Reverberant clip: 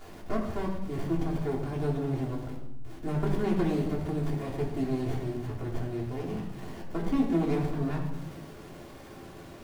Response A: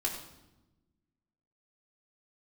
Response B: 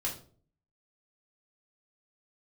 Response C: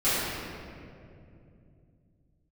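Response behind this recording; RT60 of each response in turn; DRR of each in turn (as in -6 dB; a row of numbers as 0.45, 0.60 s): A; 1.0, 0.45, 2.6 s; -4.0, -3.0, -16.5 dB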